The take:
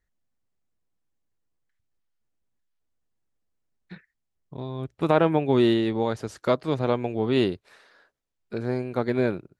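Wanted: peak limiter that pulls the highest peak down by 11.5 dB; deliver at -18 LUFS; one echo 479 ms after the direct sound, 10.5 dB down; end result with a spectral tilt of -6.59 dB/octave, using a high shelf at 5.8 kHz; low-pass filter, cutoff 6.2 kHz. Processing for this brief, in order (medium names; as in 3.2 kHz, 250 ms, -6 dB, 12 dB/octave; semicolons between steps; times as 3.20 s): low-pass 6.2 kHz; treble shelf 5.8 kHz -7.5 dB; peak limiter -18 dBFS; delay 479 ms -10.5 dB; trim +12 dB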